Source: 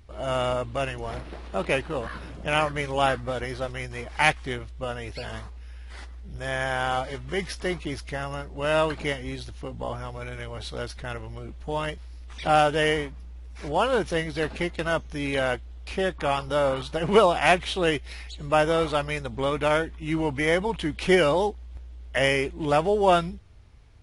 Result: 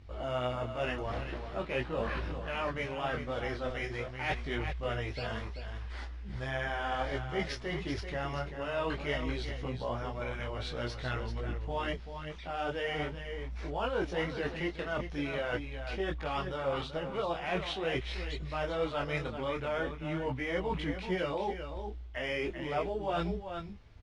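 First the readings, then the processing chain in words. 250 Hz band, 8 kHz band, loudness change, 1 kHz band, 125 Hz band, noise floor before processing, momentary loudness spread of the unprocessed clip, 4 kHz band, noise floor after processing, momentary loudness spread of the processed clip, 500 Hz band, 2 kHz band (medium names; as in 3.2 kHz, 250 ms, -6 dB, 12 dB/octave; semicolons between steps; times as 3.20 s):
-8.0 dB, -15.5 dB, -9.5 dB, -10.5 dB, -5.5 dB, -41 dBFS, 16 LU, -9.0 dB, -43 dBFS, 6 LU, -9.5 dB, -9.0 dB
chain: low-pass 4.9 kHz 12 dB/octave; reverse; compression 10:1, threshold -30 dBFS, peak gain reduction 18 dB; reverse; delay 386 ms -8.5 dB; detune thickener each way 15 cents; trim +3 dB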